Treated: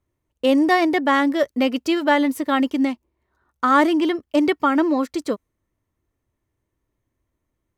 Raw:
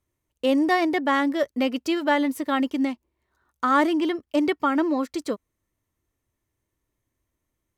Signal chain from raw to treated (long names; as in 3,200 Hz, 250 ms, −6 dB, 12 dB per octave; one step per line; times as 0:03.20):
one half of a high-frequency compander decoder only
level +4 dB